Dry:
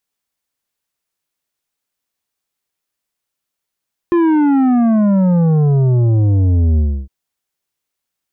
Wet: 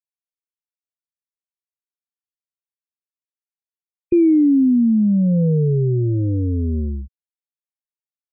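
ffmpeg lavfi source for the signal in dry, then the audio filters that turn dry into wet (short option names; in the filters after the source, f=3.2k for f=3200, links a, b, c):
-f lavfi -i "aevalsrc='0.299*clip((2.96-t)/0.3,0,1)*tanh(2.82*sin(2*PI*350*2.96/log(65/350)*(exp(log(65/350)*t/2.96)-1)))/tanh(2.82)':d=2.96:s=44100"
-filter_complex "[0:a]afftfilt=real='re*gte(hypot(re,im),0.0562)':imag='im*gte(hypot(re,im),0.0562)':win_size=1024:overlap=0.75,acrossover=split=150[a][b];[a]acompressor=threshold=-23dB:ratio=6[c];[b]asuperstop=centerf=1100:order=20:qfactor=0.6[d];[c][d]amix=inputs=2:normalize=0"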